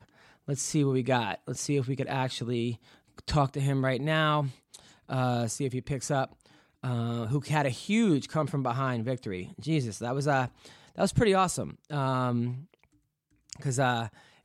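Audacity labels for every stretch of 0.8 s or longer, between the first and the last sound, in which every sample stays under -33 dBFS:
12.560000	13.530000	silence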